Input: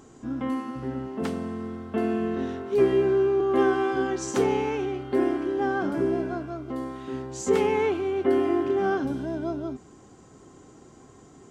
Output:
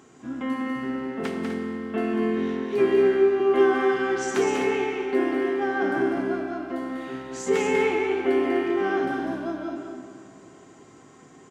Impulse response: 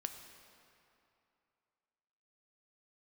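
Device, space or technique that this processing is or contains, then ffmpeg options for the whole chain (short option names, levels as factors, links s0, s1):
stadium PA: -filter_complex "[0:a]highpass=120,equalizer=f=2200:t=o:w=1.3:g=7,aecho=1:1:195.3|250.7:0.562|0.355[s0];[1:a]atrim=start_sample=2205[s1];[s0][s1]afir=irnorm=-1:irlink=0"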